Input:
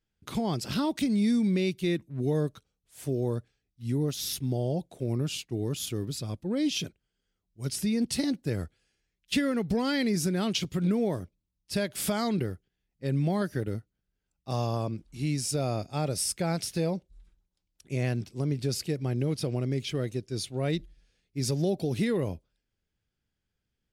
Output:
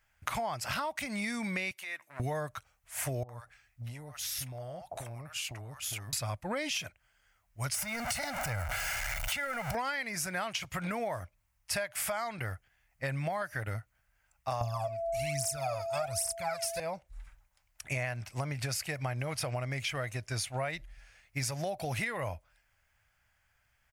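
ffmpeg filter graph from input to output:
ffmpeg -i in.wav -filter_complex "[0:a]asettb=1/sr,asplit=3[link_01][link_02][link_03];[link_01]atrim=end=1.714[link_04];[link_02]atrim=start=1.71:end=2.2,asetpts=PTS-STARTPTS,afade=type=in:duration=0.004:curve=qsin,afade=type=out:start_time=0.486:duration=0.004:curve=qsin,highpass=590,acompressor=threshold=-48dB:ratio=6:attack=3.2:release=140:knee=1:detection=peak[link_05];[link_03]atrim=start=2.196[link_06];[link_04][link_05]acrossfade=duration=0.004:curve1=hsin:curve2=qsin[link_07];[link_07][link_06]acrossfade=duration=0.004:curve1=qsin:curve2=hsin,asettb=1/sr,asplit=3[link_08][link_09][link_10];[link_08]atrim=end=3.234[link_11];[link_09]atrim=start=3.23:end=6.13,asetpts=PTS-STARTPTS,afade=type=in:duration=0.004:curve=qsin,afade=type=out:start_time=2.896:duration=0.004:curve=qsin,acompressor=threshold=-42dB:ratio=16:attack=3.2:release=140:knee=1:detection=peak,acrossover=split=770[link_12][link_13];[link_13]adelay=60[link_14];[link_12][link_14]amix=inputs=2:normalize=0,atrim=end_sample=127890[link_15];[link_10]atrim=start=6.126[link_16];[link_11][link_15]acrossfade=duration=0.004:curve1=hsin:curve2=qsin[link_17];[link_17][link_16]acrossfade=duration=0.004:curve1=qsin:curve2=hsin,asettb=1/sr,asplit=3[link_18][link_19][link_20];[link_18]atrim=end=7.744[link_21];[link_19]atrim=start=7.74:end=9.75,asetpts=PTS-STARTPTS,afade=type=in:duration=0.004:curve=qsin,afade=type=out:start_time=2.006:duration=0.004:curve=qsin,aeval=exprs='val(0)+0.5*0.02*sgn(val(0))':channel_layout=same,aecho=1:1:1.4:0.55,atrim=end_sample=88641,acompressor=threshold=-30dB:ratio=4:attack=3.2:release=140:knee=1:detection=peak[link_22];[link_20]atrim=start=9.746[link_23];[link_21][link_22]acrossfade=duration=0.004:curve1=hsin:curve2=qsin[link_24];[link_24][link_23]acrossfade=duration=0.004:curve1=qsin:curve2=hsin,asettb=1/sr,asplit=3[link_25][link_26][link_27];[link_25]atrim=end=14.614[link_28];[link_26]atrim=start=14.61:end=16.8,asetpts=PTS-STARTPTS,afade=type=in:duration=0.004:curve=qsin,afade=type=out:start_time=2.186:duration=0.004:curve=qsin,bass=frequency=250:gain=5,treble=frequency=4000:gain=7,aphaser=in_gain=1:out_gain=1:delay=2.5:decay=0.78:speed=1.2:type=triangular,aeval=exprs='val(0)+0.0224*sin(2*PI*670*n/s)':channel_layout=same[link_29];[link_27]atrim=start=16.796[link_30];[link_28][link_29]acrossfade=duration=0.004:curve1=hsin:curve2=qsin[link_31];[link_31][link_30]acrossfade=duration=0.004:curve1=qsin:curve2=hsin,firequalizer=gain_entry='entry(110,0);entry(170,-11);entry(400,-14);entry(620,8);entry(970,10);entry(2100,12);entry(3600,-2);entry(6400,4);entry(14000,6)':delay=0.05:min_phase=1,acompressor=threshold=-39dB:ratio=12,volume=7.5dB" out.wav

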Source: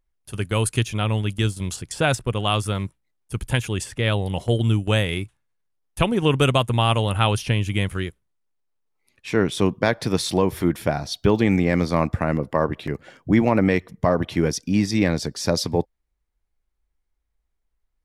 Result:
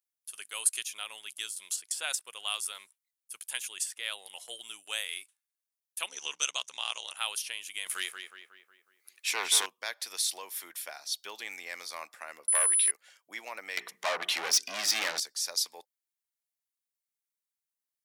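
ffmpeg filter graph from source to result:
ffmpeg -i in.wav -filter_complex "[0:a]asettb=1/sr,asplit=3[link_01][link_02][link_03];[link_01]atrim=end=6.084[link_04];[link_02]atrim=start=6.08:end=7.17,asetpts=PTS-STARTPTS,afade=type=in:duration=0.004:curve=qsin,afade=type=out:start_time=1.086:duration=0.004:curve=qsin,lowpass=frequency=6000:width_type=q:width=11,aeval=exprs='val(0)*sin(2*PI*36*n/s)':channel_layout=same[link_05];[link_03]atrim=start=7.166[link_06];[link_04][link_05]acrossfade=duration=0.004:curve1=hsin:curve2=qsin[link_07];[link_07][link_06]acrossfade=duration=0.004:curve1=qsin:curve2=hsin,asettb=1/sr,asplit=3[link_08][link_09][link_10];[link_08]atrim=end=7.864[link_11];[link_09]atrim=start=7.86:end=9.66,asetpts=PTS-STARTPTS,afade=type=in:duration=0.004:curve=qsin,afade=type=out:start_time=1.796:duration=0.004:curve=qsin,aeval=exprs='0.531*sin(PI/2*2.24*val(0)/0.531)':channel_layout=same,asplit=2[link_12][link_13];[link_13]adelay=183,lowpass=frequency=3000:poles=1,volume=-6dB,asplit=2[link_14][link_15];[link_15]adelay=183,lowpass=frequency=3000:poles=1,volume=0.55,asplit=2[link_16][link_17];[link_17]adelay=183,lowpass=frequency=3000:poles=1,volume=0.55,asplit=2[link_18][link_19];[link_19]adelay=183,lowpass=frequency=3000:poles=1,volume=0.55,asplit=2[link_20][link_21];[link_21]adelay=183,lowpass=frequency=3000:poles=1,volume=0.55,asplit=2[link_22][link_23];[link_23]adelay=183,lowpass=frequency=3000:poles=1,volume=0.55,asplit=2[link_24][link_25];[link_25]adelay=183,lowpass=frequency=3000:poles=1,volume=0.55[link_26];[link_12][link_14][link_16][link_18][link_20][link_22][link_24][link_26]amix=inputs=8:normalize=0,atrim=end_sample=79380[link_27];[link_10]atrim=start=9.656[link_28];[link_11][link_27]acrossfade=duration=0.004:curve1=hsin:curve2=qsin[link_29];[link_29][link_28]acrossfade=duration=0.004:curve1=qsin:curve2=hsin,asettb=1/sr,asplit=3[link_30][link_31][link_32];[link_30]atrim=end=12.484[link_33];[link_31]atrim=start=12.48:end=12.91,asetpts=PTS-STARTPTS,afade=type=in:duration=0.004:curve=qsin,afade=type=out:start_time=0.426:duration=0.004:curve=qsin,agate=range=-16dB:threshold=-48dB:ratio=16:release=100:detection=peak,aeval=exprs='val(0)+0.0224*sin(2*PI*10000*n/s)':channel_layout=same,aeval=exprs='0.531*sin(PI/2*1.78*val(0)/0.531)':channel_layout=same[link_34];[link_32]atrim=start=12.906[link_35];[link_33][link_34]acrossfade=duration=0.004:curve1=hsin:curve2=qsin[link_36];[link_36][link_35]acrossfade=duration=0.004:curve1=qsin:curve2=hsin,asettb=1/sr,asplit=3[link_37][link_38][link_39];[link_37]atrim=end=13.774[link_40];[link_38]atrim=start=13.77:end=15.2,asetpts=PTS-STARTPTS,afade=type=in:duration=0.004:curve=qsin,afade=type=out:start_time=1.426:duration=0.004:curve=qsin,equalizer=frequency=170:width=1.2:gain=12,bandreject=frequency=60:width_type=h:width=6,bandreject=frequency=120:width_type=h:width=6,bandreject=frequency=180:width_type=h:width=6,bandreject=frequency=240:width_type=h:width=6,bandreject=frequency=300:width_type=h:width=6,bandreject=frequency=360:width_type=h:width=6,bandreject=frequency=420:width_type=h:width=6,asplit=2[link_41][link_42];[link_42]highpass=frequency=720:poles=1,volume=29dB,asoftclip=type=tanh:threshold=-0.5dB[link_43];[link_41][link_43]amix=inputs=2:normalize=0,lowpass=frequency=1700:poles=1,volume=-6dB[link_44];[link_39]atrim=start=15.196[link_45];[link_40][link_44]acrossfade=duration=0.004:curve1=hsin:curve2=qsin[link_46];[link_46][link_45]acrossfade=duration=0.004:curve1=qsin:curve2=hsin,highpass=580,aderivative" out.wav

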